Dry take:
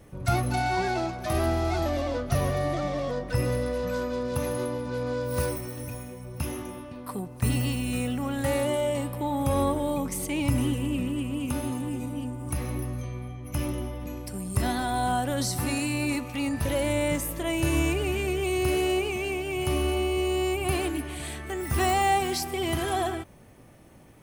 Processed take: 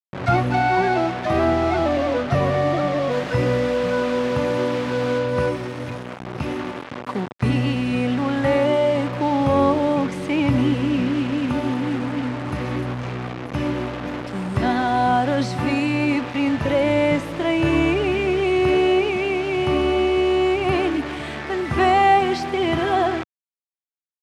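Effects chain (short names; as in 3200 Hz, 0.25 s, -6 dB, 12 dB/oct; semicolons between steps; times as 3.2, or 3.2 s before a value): bit-crush 6-bit; 3.1–5.18 added noise white -38 dBFS; BPF 130–2700 Hz; gain +8.5 dB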